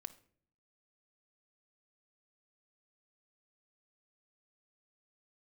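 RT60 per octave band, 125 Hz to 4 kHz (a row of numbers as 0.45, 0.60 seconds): 0.85, 0.80, 0.65, 0.45, 0.45, 0.40 seconds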